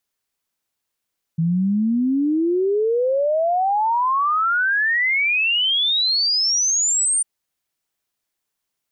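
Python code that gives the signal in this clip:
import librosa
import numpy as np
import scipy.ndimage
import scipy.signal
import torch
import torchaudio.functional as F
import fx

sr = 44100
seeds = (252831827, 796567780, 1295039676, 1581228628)

y = fx.ess(sr, length_s=5.85, from_hz=160.0, to_hz=9100.0, level_db=-16.0)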